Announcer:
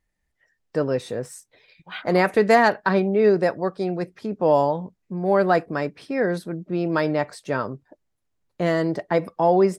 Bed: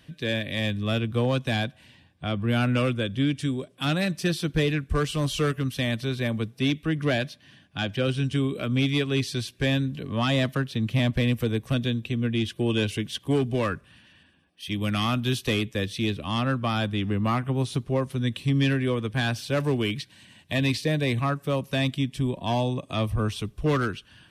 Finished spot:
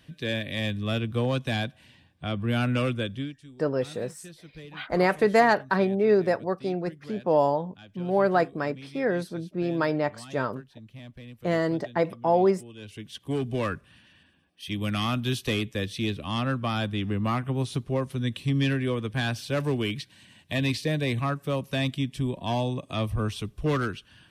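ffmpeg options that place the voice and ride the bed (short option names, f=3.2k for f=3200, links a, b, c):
-filter_complex "[0:a]adelay=2850,volume=-3.5dB[a];[1:a]volume=17dB,afade=t=out:st=3.04:d=0.31:silence=0.112202,afade=t=in:st=12.77:d=0.89:silence=0.112202[b];[a][b]amix=inputs=2:normalize=0"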